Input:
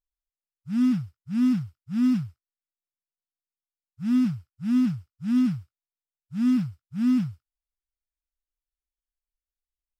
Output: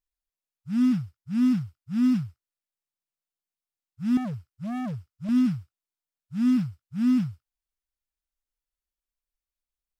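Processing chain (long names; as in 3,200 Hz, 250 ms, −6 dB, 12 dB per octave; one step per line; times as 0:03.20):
0:04.17–0:05.29: hard clipping −29.5 dBFS, distortion −10 dB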